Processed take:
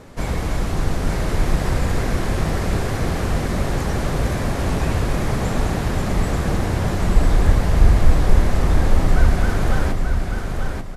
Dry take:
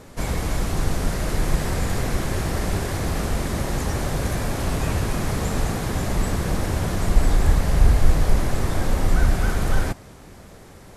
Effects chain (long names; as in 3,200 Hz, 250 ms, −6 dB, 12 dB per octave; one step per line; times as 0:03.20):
high-shelf EQ 6,000 Hz −8.5 dB
on a send: repeating echo 887 ms, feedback 27%, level −5 dB
on the sum: level +2 dB